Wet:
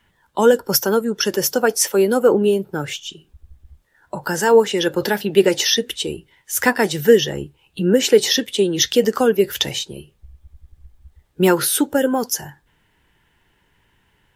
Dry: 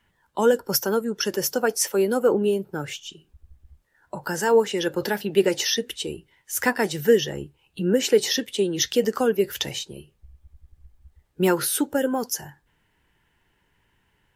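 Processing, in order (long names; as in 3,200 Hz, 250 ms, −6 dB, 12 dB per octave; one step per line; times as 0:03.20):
parametric band 3,500 Hz +3 dB 0.25 octaves
level +5.5 dB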